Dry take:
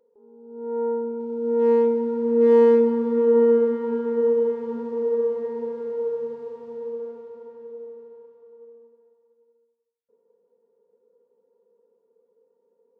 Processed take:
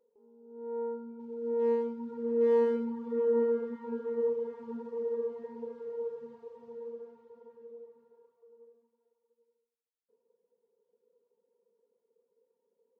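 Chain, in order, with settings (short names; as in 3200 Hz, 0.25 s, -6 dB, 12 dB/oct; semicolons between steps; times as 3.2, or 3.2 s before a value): reverb removal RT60 0.9 s; non-linear reverb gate 0.13 s rising, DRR 8.5 dB; gain -8 dB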